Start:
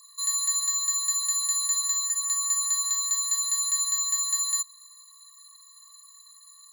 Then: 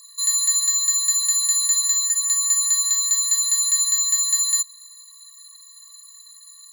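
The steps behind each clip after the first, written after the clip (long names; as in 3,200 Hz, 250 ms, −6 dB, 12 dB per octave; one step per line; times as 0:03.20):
flat-topped bell 1,000 Hz −8.5 dB 1.1 octaves
level +6.5 dB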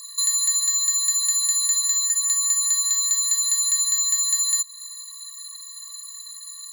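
downward compressor 2.5 to 1, threshold −30 dBFS, peak gain reduction 10 dB
level +7 dB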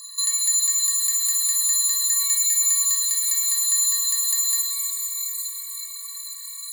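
reverb with rising layers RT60 3.7 s, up +12 semitones, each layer −2 dB, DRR 0.5 dB
level −1 dB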